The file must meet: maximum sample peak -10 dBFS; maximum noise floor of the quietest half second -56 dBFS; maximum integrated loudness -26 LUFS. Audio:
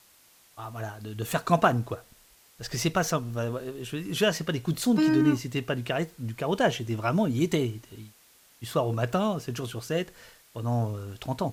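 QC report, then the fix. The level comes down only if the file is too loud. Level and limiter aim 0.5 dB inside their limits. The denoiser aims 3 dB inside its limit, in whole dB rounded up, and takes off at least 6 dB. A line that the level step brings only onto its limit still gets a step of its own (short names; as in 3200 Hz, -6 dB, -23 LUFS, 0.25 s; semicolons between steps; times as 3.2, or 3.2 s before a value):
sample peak -8.0 dBFS: fail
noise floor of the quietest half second -59 dBFS: OK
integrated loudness -28.0 LUFS: OK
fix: limiter -10.5 dBFS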